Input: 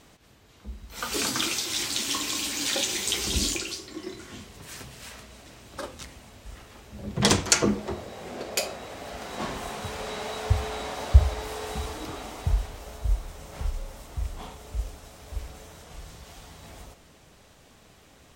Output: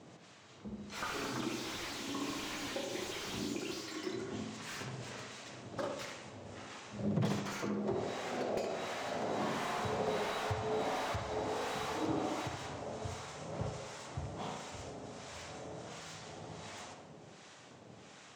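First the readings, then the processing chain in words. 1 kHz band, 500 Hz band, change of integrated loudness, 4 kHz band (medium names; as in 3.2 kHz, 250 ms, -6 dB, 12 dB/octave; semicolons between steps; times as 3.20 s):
-3.5 dB, -3.0 dB, -11.0 dB, -13.5 dB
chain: elliptic band-pass 110–7300 Hz; compression 16:1, threshold -32 dBFS, peak gain reduction 18 dB; harmonic tremolo 1.4 Hz, depth 70%, crossover 830 Hz; tape echo 71 ms, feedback 70%, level -3 dB, low-pass 1.5 kHz; slew-rate limiter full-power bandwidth 19 Hz; trim +3 dB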